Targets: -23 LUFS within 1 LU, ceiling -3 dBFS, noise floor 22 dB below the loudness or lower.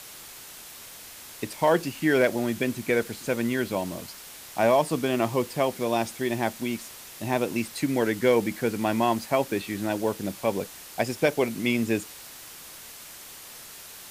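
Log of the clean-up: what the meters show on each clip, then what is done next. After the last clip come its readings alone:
noise floor -44 dBFS; noise floor target -49 dBFS; loudness -26.5 LUFS; peak level -10.5 dBFS; loudness target -23.0 LUFS
-> noise reduction 6 dB, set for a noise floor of -44 dBFS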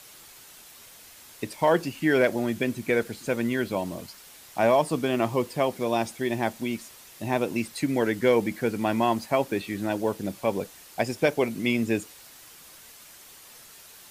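noise floor -49 dBFS; loudness -26.5 LUFS; peak level -10.5 dBFS; loudness target -23.0 LUFS
-> trim +3.5 dB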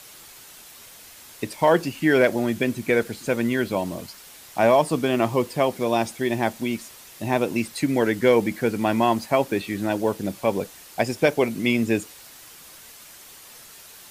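loudness -23.0 LUFS; peak level -7.0 dBFS; noise floor -46 dBFS

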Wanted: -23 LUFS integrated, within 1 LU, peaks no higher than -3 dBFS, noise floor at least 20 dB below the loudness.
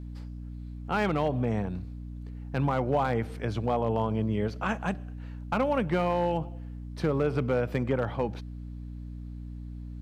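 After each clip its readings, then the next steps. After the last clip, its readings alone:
clipped samples 0.5%; clipping level -18.0 dBFS; hum 60 Hz; highest harmonic 300 Hz; hum level -37 dBFS; loudness -29.0 LUFS; peak level -18.0 dBFS; loudness target -23.0 LUFS
-> clip repair -18 dBFS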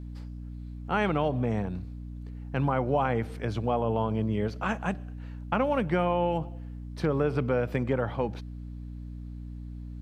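clipped samples 0.0%; hum 60 Hz; highest harmonic 300 Hz; hum level -37 dBFS
-> de-hum 60 Hz, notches 5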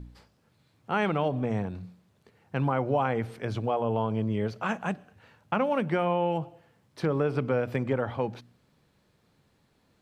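hum not found; loudness -29.0 LUFS; peak level -12.0 dBFS; loudness target -23.0 LUFS
-> trim +6 dB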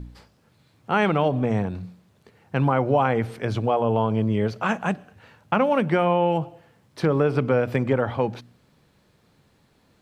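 loudness -23.0 LUFS; peak level -6.0 dBFS; noise floor -62 dBFS

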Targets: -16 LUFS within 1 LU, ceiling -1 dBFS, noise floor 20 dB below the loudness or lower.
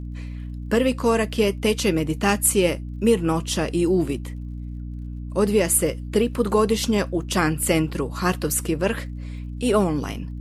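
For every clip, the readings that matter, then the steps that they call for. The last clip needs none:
tick rate 42 per s; hum 60 Hz; highest harmonic 300 Hz; hum level -29 dBFS; loudness -22.0 LUFS; peak level -6.0 dBFS; loudness target -16.0 LUFS
-> de-click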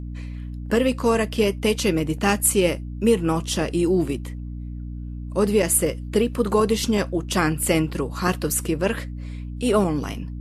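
tick rate 0.19 per s; hum 60 Hz; highest harmonic 300 Hz; hum level -30 dBFS
-> hum notches 60/120/180/240/300 Hz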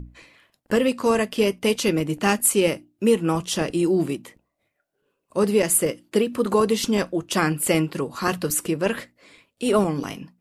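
hum not found; loudness -22.5 LUFS; peak level -6.0 dBFS; loudness target -16.0 LUFS
-> trim +6.5 dB; peak limiter -1 dBFS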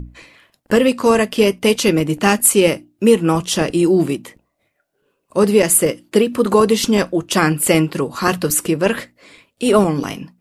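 loudness -16.0 LUFS; peak level -1.0 dBFS; noise floor -70 dBFS

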